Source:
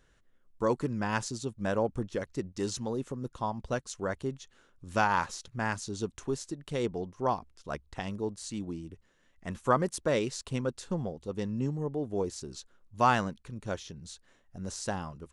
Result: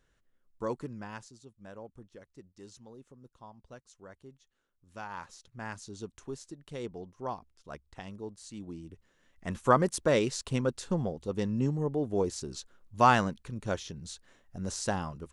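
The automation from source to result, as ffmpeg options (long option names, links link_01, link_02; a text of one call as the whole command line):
ffmpeg -i in.wav -af "volume=14dB,afade=type=out:start_time=0.69:duration=0.62:silence=0.266073,afade=type=in:start_time=4.94:duration=0.87:silence=0.316228,afade=type=in:start_time=8.52:duration=1.08:silence=0.316228" out.wav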